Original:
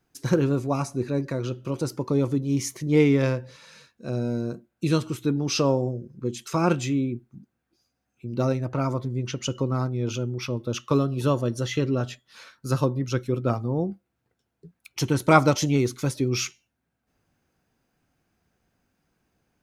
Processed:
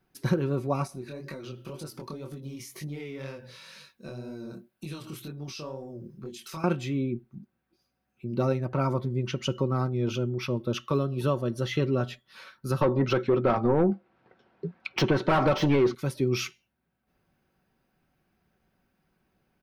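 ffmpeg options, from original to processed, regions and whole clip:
-filter_complex "[0:a]asettb=1/sr,asplit=3[s0][s1][s2];[s0]atrim=end=0.874[s3];[s1]atrim=start=0.87:end=6.64,asetpts=PTS-STARTPTS,afade=t=in:d=0.004:c=qsin,afade=t=out:st=5.766:d=0.004:c=qsin,highshelf=f=2600:g=11,acompressor=threshold=0.0251:ratio=6:attack=3.2:release=140:knee=1:detection=peak,flanger=delay=19.5:depth=6.6:speed=2[s4];[s2]atrim=start=6.636[s5];[s3][s4]acrossfade=d=0.004:c1=hsin:c2=qsin[s6];[s6][s5]acrossfade=d=0.004:c1=qsin:c2=hsin,asettb=1/sr,asplit=3[s7][s8][s9];[s7]atrim=end=12.814[s10];[s8]atrim=start=12.81:end=15.95,asetpts=PTS-STARTPTS,afade=t=in:d=0.004:c=qsin,afade=t=out:st=3.136:d=0.004:c=qsin,lowpass=f=6000:w=0.5412,lowpass=f=6000:w=1.3066,asplit=2[s11][s12];[s12]highpass=f=720:p=1,volume=28.2,asoftclip=type=tanh:threshold=0.708[s13];[s11][s13]amix=inputs=2:normalize=0,lowpass=f=1000:p=1,volume=0.501[s14];[s9]atrim=start=15.946[s15];[s10][s14]acrossfade=d=0.004:c1=hsin:c2=qsin[s16];[s16][s15]acrossfade=d=0.004:c1=qsin:c2=hsin,equalizer=f=7000:w=1.6:g=-11,aecho=1:1:5.3:0.33,alimiter=limit=0.178:level=0:latency=1:release=484"

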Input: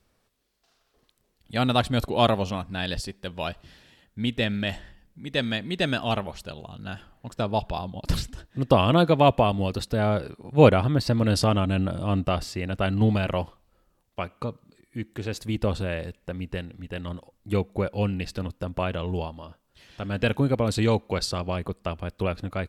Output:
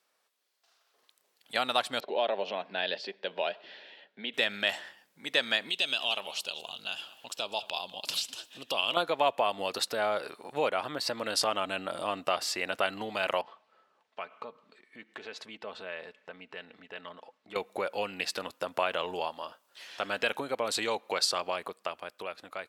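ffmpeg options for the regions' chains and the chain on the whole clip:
-filter_complex "[0:a]asettb=1/sr,asplit=3[s0][s1][s2];[s0]atrim=end=2.004[s3];[s1]atrim=start=2:end=4.34,asetpts=PTS-STARTPTS,afade=t=in:d=0.004:c=qsin,afade=t=out:st=2.336:d=0.004:c=qsin,acompressor=threshold=0.02:ratio=2:attack=3.2:release=140:knee=1:detection=peak,highpass=f=180:w=0.5412,highpass=f=180:w=1.3066,equalizer=f=180:t=q:w=4:g=5,equalizer=f=410:t=q:w=4:g=7,equalizer=f=600:t=q:w=4:g=6,equalizer=f=1200:t=q:w=4:g=-9,lowpass=f=3900:w=0.5412,lowpass=f=3900:w=1.3066[s4];[s2]atrim=start=4.336[s5];[s3][s4]acrossfade=d=0.004:c1=hsin:c2=qsin[s6];[s6][s5]acrossfade=d=0.004:c1=qsin:c2=hsin,asettb=1/sr,asplit=3[s7][s8][s9];[s7]atrim=end=5.694[s10];[s8]atrim=start=5.69:end=8.97,asetpts=PTS-STARTPTS,afade=t=in:d=0.004:c=qsin,afade=t=out:st=3.276:d=0.004:c=qsin,highshelf=f=2300:t=q:w=3:g=6.5,acompressor=threshold=0.00794:ratio=2:attack=3.2:release=140:knee=1:detection=peak,aecho=1:1:200:0.112,atrim=end_sample=144648[s11];[s9]atrim=start=8.966[s12];[s10][s11]acrossfade=d=0.004:c1=hsin:c2=qsin[s13];[s13][s12]acrossfade=d=0.004:c1=qsin:c2=hsin,asettb=1/sr,asplit=3[s14][s15][s16];[s14]atrim=end=13.414[s17];[s15]atrim=start=13.41:end=17.56,asetpts=PTS-STARTPTS,afade=t=in:d=0.004:c=qsin,afade=t=out:st=4.146:d=0.004:c=qsin,lowpass=3400,aecho=1:1:4.6:0.4,atrim=end_sample=183015,acompressor=threshold=0.00708:ratio=2.5:attack=3.2:release=140:knee=1:detection=peak[s18];[s16]atrim=start=17.556[s19];[s17][s18]acrossfade=d=0.004:c1=hsin:c2=qsin[s20];[s20][s19]acrossfade=d=0.004:c1=qsin:c2=hsin,acompressor=threshold=0.0447:ratio=4,highpass=660,dynaudnorm=f=120:g=21:m=2.66,volume=0.794"

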